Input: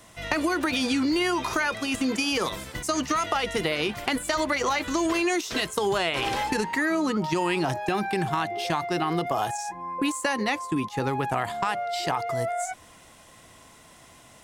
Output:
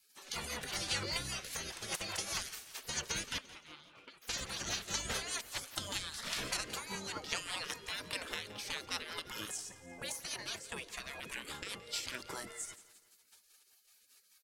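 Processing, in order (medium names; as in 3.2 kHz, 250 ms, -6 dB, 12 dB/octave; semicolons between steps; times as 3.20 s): 3.38–4.22 s: vowel filter a; spectral gate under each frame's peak -20 dB weak; rotary cabinet horn 5 Hz; feedback delay 172 ms, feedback 47%, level -17.5 dB; trim +1 dB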